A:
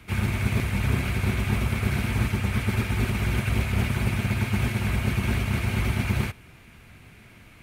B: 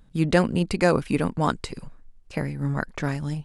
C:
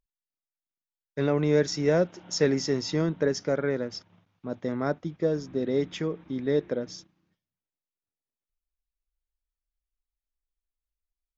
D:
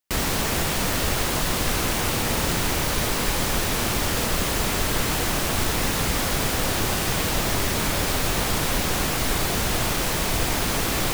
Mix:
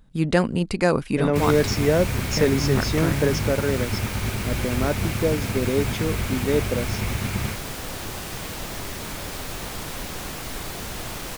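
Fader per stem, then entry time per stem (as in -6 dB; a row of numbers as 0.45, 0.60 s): -2.5, 0.0, +3.0, -9.0 dB; 1.25, 0.00, 0.00, 1.25 s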